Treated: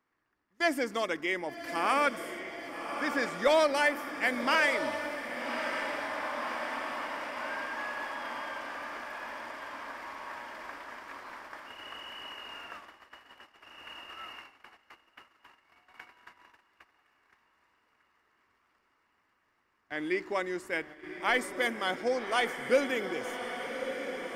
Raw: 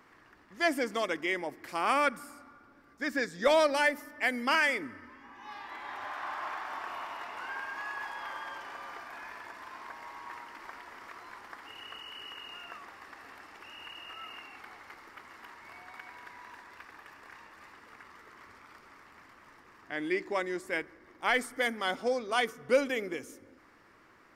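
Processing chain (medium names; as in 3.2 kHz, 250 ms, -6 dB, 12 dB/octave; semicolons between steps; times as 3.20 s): echo that smears into a reverb 1153 ms, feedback 66%, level -8 dB; gate -45 dBFS, range -20 dB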